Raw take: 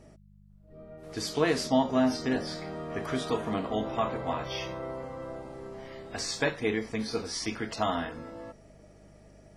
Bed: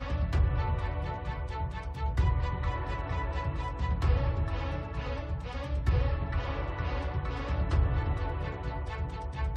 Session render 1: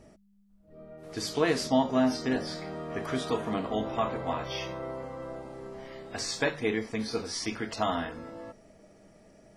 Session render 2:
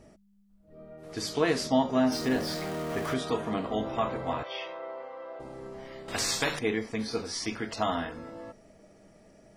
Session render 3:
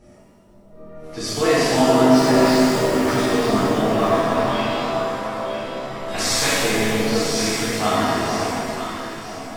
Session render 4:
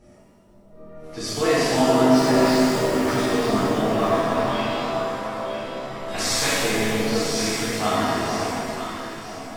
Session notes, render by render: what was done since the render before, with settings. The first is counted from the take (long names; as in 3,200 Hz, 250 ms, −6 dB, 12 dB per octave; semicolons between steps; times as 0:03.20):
hum removal 50 Hz, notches 3
0:02.12–0:03.14: converter with a step at zero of −35 dBFS; 0:04.43–0:05.40: Chebyshev band-pass filter 550–3,200 Hz; 0:06.08–0:06.59: every bin compressed towards the loudest bin 2 to 1
delay that swaps between a low-pass and a high-pass 476 ms, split 950 Hz, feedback 56%, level −3 dB; reverb with rising layers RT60 2 s, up +7 semitones, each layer −8 dB, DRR −9.5 dB
level −2.5 dB